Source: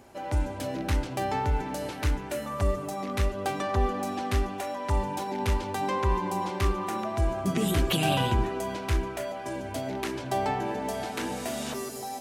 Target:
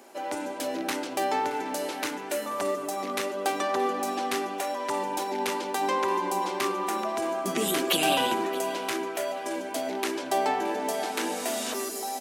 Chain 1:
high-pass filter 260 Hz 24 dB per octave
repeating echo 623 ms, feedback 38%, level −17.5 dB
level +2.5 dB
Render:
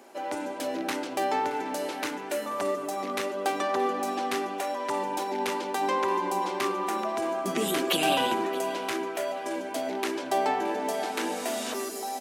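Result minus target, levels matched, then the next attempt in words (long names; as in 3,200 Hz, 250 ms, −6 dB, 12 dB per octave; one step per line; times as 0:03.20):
8,000 Hz band −3.0 dB
high-pass filter 260 Hz 24 dB per octave
high-shelf EQ 4,600 Hz +4.5 dB
repeating echo 623 ms, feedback 38%, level −17.5 dB
level +2.5 dB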